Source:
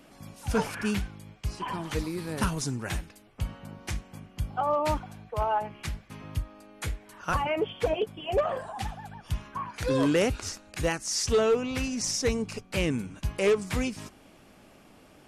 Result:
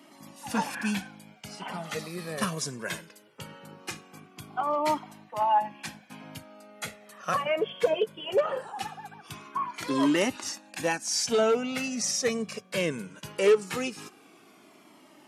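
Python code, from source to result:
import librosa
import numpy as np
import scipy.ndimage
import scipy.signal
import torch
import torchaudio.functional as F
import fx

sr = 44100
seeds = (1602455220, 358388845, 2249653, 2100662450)

y = scipy.signal.sosfilt(scipy.signal.butter(4, 180.0, 'highpass', fs=sr, output='sos'), x)
y = fx.comb_cascade(y, sr, direction='falling', hz=0.2)
y = F.gain(torch.from_numpy(y), 5.5).numpy()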